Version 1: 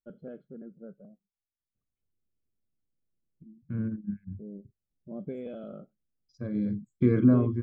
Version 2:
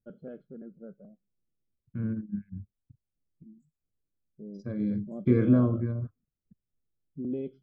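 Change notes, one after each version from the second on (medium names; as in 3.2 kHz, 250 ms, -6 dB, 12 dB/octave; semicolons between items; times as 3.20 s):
second voice: entry -1.75 s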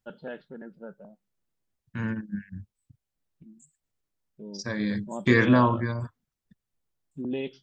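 master: remove boxcar filter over 48 samples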